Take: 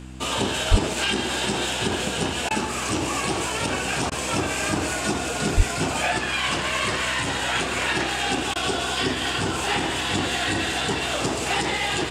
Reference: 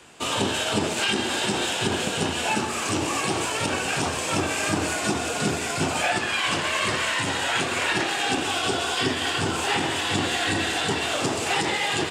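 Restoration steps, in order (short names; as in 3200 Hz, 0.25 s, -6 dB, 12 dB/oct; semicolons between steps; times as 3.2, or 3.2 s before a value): de-hum 63.8 Hz, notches 5; de-plosive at 0.7/5.56; interpolate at 2.49/4.1/8.54, 15 ms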